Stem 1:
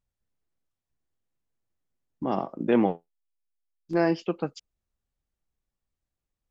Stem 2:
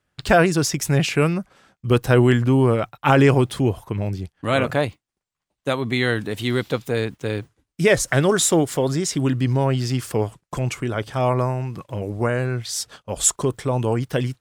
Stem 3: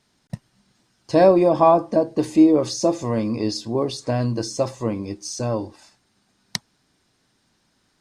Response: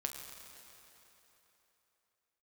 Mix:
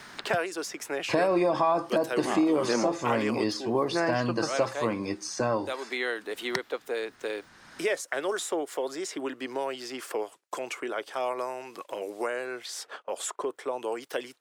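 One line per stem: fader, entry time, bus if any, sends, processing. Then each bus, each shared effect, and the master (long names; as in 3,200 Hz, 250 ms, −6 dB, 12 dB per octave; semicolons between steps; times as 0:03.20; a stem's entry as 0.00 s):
−5.0 dB, 0.00 s, bus A, no send, high-shelf EQ 5,600 Hz +11.5 dB
−12.5 dB, 0.00 s, no bus, no send, high-pass filter 350 Hz 24 dB per octave
−4.0 dB, 0.00 s, bus A, no send, parametric band 1,700 Hz +3.5 dB
bus A: 0.0 dB, parametric band 1,400 Hz +8 dB 1.6 octaves; brickwall limiter −12 dBFS, peak gain reduction 9 dB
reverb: not used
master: low-shelf EQ 150 Hz −8.5 dB; multiband upward and downward compressor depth 70%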